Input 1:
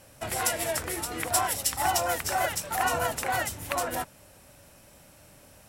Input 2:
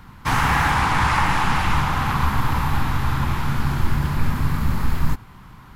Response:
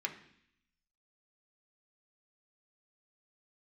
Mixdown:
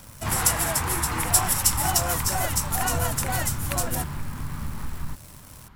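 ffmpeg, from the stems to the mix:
-filter_complex "[0:a]bass=f=250:g=14,treble=f=4000:g=10,acrusher=bits=8:dc=4:mix=0:aa=0.000001,volume=0.75[s0];[1:a]acompressor=threshold=0.0708:ratio=2,volume=0.447[s1];[s0][s1]amix=inputs=2:normalize=0"

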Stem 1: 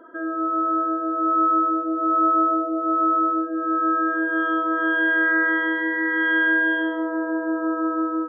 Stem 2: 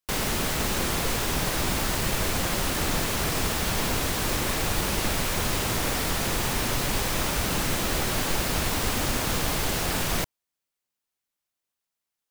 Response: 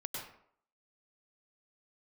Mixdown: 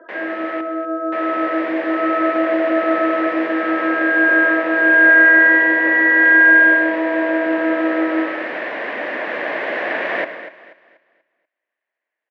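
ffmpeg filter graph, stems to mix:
-filter_complex "[0:a]volume=1.19,asplit=2[s0][s1];[s1]volume=0.631[s2];[1:a]volume=0.891,asplit=3[s3][s4][s5];[s3]atrim=end=0.61,asetpts=PTS-STARTPTS,afade=t=out:st=0.606:d=0.004:c=hsin[s6];[s4]atrim=start=0.61:end=1.12,asetpts=PTS-STARTPTS,volume=0[s7];[s5]atrim=start=1.12,asetpts=PTS-STARTPTS,afade=t=in:d=0.004:c=hsin[s8];[s6][s7][s8]concat=n=3:v=0:a=1,asplit=3[s9][s10][s11];[s10]volume=0.355[s12];[s11]volume=0.266[s13];[2:a]atrim=start_sample=2205[s14];[s2][s12]amix=inputs=2:normalize=0[s15];[s15][s14]afir=irnorm=-1:irlink=0[s16];[s13]aecho=0:1:242|484|726|968|1210:1|0.34|0.116|0.0393|0.0134[s17];[s0][s9][s16][s17]amix=inputs=4:normalize=0,dynaudnorm=f=290:g=9:m=3.76,highpass=f=340:w=0.5412,highpass=f=340:w=1.3066,equalizer=f=420:t=q:w=4:g=-5,equalizer=f=600:t=q:w=4:g=6,equalizer=f=860:t=q:w=4:g=-6,equalizer=f=1300:t=q:w=4:g=-9,equalizer=f=1800:t=q:w=4:g=9,lowpass=f=2200:w=0.5412,lowpass=f=2200:w=1.3066"

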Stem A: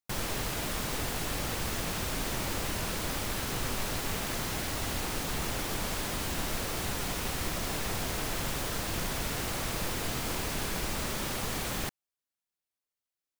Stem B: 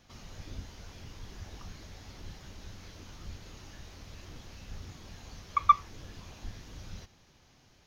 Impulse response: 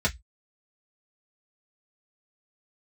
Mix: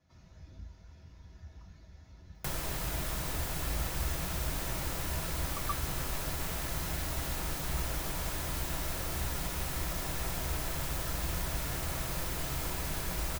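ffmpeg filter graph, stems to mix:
-filter_complex "[0:a]highshelf=f=11000:g=7.5,acrossover=split=130|470[s0][s1][s2];[s0]acompressor=threshold=0.0158:ratio=4[s3];[s1]acompressor=threshold=0.00316:ratio=4[s4];[s2]acompressor=threshold=0.0126:ratio=4[s5];[s3][s4][s5]amix=inputs=3:normalize=0,adelay=2350,volume=1.19,asplit=2[s6][s7];[s7]volume=0.1[s8];[1:a]volume=0.15,asplit=2[s9][s10];[s10]volume=0.398[s11];[2:a]atrim=start_sample=2205[s12];[s8][s11]amix=inputs=2:normalize=0[s13];[s13][s12]afir=irnorm=-1:irlink=0[s14];[s6][s9][s14]amix=inputs=3:normalize=0"

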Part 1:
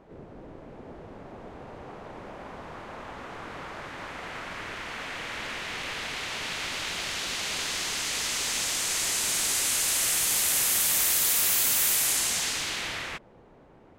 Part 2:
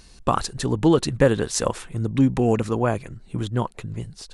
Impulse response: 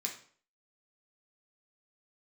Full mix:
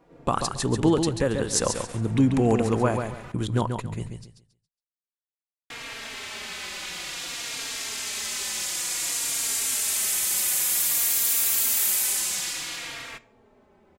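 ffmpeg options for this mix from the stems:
-filter_complex "[0:a]bandreject=f=50:t=h:w=6,bandreject=f=100:t=h:w=6,asplit=2[s0][s1];[s1]adelay=3.7,afreqshift=-0.55[s2];[s0][s2]amix=inputs=2:normalize=1,volume=0.794,asplit=3[s3][s4][s5];[s3]atrim=end=3.32,asetpts=PTS-STARTPTS,afade=t=out:st=3.316:d=0.004:c=hsin[s6];[s4]atrim=start=3.32:end=5.7,asetpts=PTS-STARTPTS,volume=0[s7];[s5]atrim=start=5.7,asetpts=PTS-STARTPTS,afade=t=in:d=0.004:c=hsin[s8];[s6][s7][s8]concat=n=3:v=0:a=1,asplit=2[s9][s10];[s10]volume=0.266[s11];[1:a]agate=range=0.0141:threshold=0.0158:ratio=16:detection=peak,alimiter=limit=0.316:level=0:latency=1:release=458,volume=0.891,asplit=3[s12][s13][s14];[s13]volume=0.1[s15];[s14]volume=0.501[s16];[2:a]atrim=start_sample=2205[s17];[s11][s15]amix=inputs=2:normalize=0[s18];[s18][s17]afir=irnorm=-1:irlink=0[s19];[s16]aecho=0:1:138|276|414|552:1|0.25|0.0625|0.0156[s20];[s9][s12][s19][s20]amix=inputs=4:normalize=0,highshelf=f=7400:g=6"

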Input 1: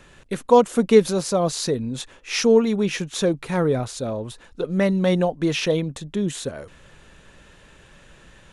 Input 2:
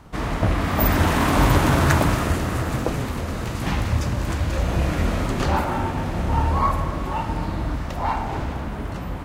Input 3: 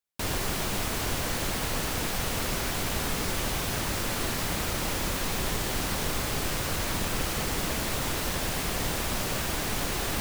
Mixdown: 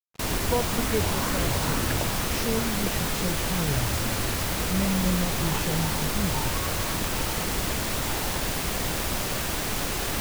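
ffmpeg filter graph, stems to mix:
-filter_complex "[0:a]asubboost=boost=10:cutoff=130,volume=0.237[s0];[1:a]asplit=2[s1][s2];[s2]afreqshift=2.1[s3];[s1][s3]amix=inputs=2:normalize=1,volume=0.335[s4];[2:a]volume=1.12[s5];[s0][s4][s5]amix=inputs=3:normalize=0,acrusher=bits=4:mix=0:aa=0.5"

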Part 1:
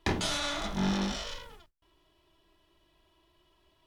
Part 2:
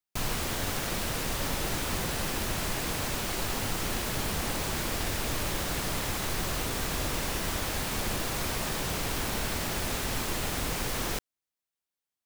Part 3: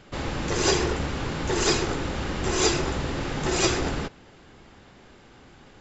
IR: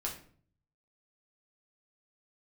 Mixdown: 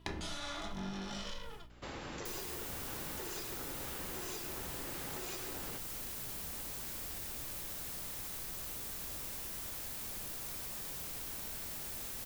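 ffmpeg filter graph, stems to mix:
-filter_complex "[0:a]volume=0.944,asplit=2[s0][s1];[s1]volume=0.473[s2];[1:a]aemphasis=mode=production:type=50kf,adelay=2100,volume=0.141[s3];[2:a]lowshelf=f=200:g=-8.5,adelay=1700,volume=0.335[s4];[s0][s4]amix=inputs=2:normalize=0,aeval=exprs='val(0)+0.00126*(sin(2*PI*60*n/s)+sin(2*PI*2*60*n/s)/2+sin(2*PI*3*60*n/s)/3+sin(2*PI*4*60*n/s)/4+sin(2*PI*5*60*n/s)/5)':c=same,acompressor=threshold=0.01:ratio=6,volume=1[s5];[3:a]atrim=start_sample=2205[s6];[s2][s6]afir=irnorm=-1:irlink=0[s7];[s3][s5][s7]amix=inputs=3:normalize=0,acompressor=threshold=0.0126:ratio=6"

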